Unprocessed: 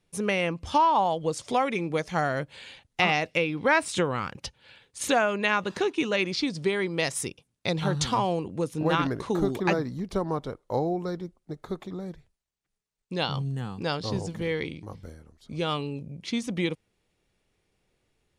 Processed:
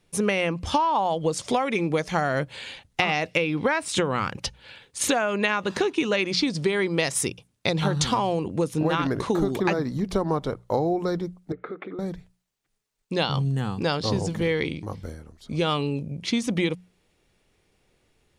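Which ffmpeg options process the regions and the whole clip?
ffmpeg -i in.wav -filter_complex "[0:a]asettb=1/sr,asplit=3[link_01][link_02][link_03];[link_01]atrim=end=11.524[link_04];[link_02]atrim=start=11.52:end=11.99,asetpts=PTS-STARTPTS,afade=type=in:duration=0.004:curve=qsin,afade=type=out:start_time=0.466:duration=0.004:curve=qsin,acompressor=threshold=-37dB:ratio=6:attack=3.2:release=140:knee=1:detection=peak,highpass=280,equalizer=frequency=300:width_type=q:width=4:gain=5,equalizer=frequency=460:width_type=q:width=4:gain=8,equalizer=frequency=660:width_type=q:width=4:gain=-4,equalizer=frequency=950:width_type=q:width=4:gain=-8,equalizer=frequency=1400:width_type=q:width=4:gain=8,equalizer=frequency=2200:width_type=q:width=4:gain=7,lowpass=frequency=2600:width=0.5412,lowpass=frequency=2600:width=1.3066[link_05];[link_03]atrim=start=11.986[link_06];[link_04][link_05]acrossfade=duration=0.004:curve1=hsin:curve2=qsin[link_07];[link_07][link_06]acrossfade=duration=0.004:curve1=qsin:curve2=hsin,bandreject=frequency=60:width_type=h:width=6,bandreject=frequency=120:width_type=h:width=6,bandreject=frequency=180:width_type=h:width=6,acompressor=threshold=-26dB:ratio=10,volume=7dB" out.wav

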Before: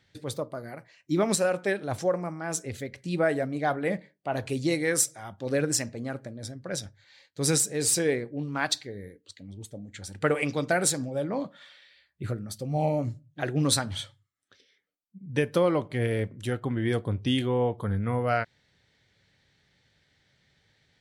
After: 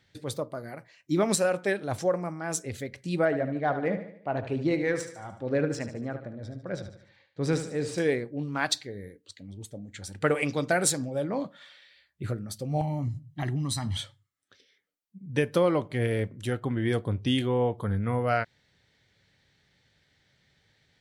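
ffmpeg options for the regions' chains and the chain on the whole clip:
ffmpeg -i in.wav -filter_complex "[0:a]asettb=1/sr,asplit=3[link_01][link_02][link_03];[link_01]atrim=end=3.254[link_04];[link_02]atrim=start=3.25:end=7.98,asetpts=PTS-STARTPTS,afade=type=in:duration=0.004:curve=qsin,afade=type=out:start_time=4.726:duration=0.004:curve=qsin,adynamicsmooth=sensitivity=0.5:basefreq=2400,aecho=1:1:74|148|222|296|370:0.299|0.143|0.0688|0.033|0.0158,atrim=end_sample=208593[link_05];[link_03]atrim=start=7.976[link_06];[link_04][link_05]acrossfade=duration=0.004:curve1=hsin:curve2=qsin[link_07];[link_07][link_06]acrossfade=duration=0.004:curve1=qsin:curve2=hsin,asettb=1/sr,asplit=3[link_08][link_09][link_10];[link_08]atrim=end=12.814[link_11];[link_09]atrim=start=12.81:end=13.97,asetpts=PTS-STARTPTS,afade=type=in:duration=0.004:curve=qsin,afade=type=out:start_time=1.156:duration=0.004:curve=qsin,bass=frequency=250:gain=5,treble=frequency=4000:gain=1,aecho=1:1:1:0.8,atrim=end_sample=51156,acompressor=threshold=-26dB:ratio=10:attack=3.2:release=140:knee=1:detection=peak[link_12];[link_10]atrim=start=13.966[link_13];[link_11][link_12]acrossfade=duration=0.004:curve1=hsin:curve2=qsin[link_14];[link_14][link_13]acrossfade=duration=0.004:curve1=qsin:curve2=hsin" out.wav

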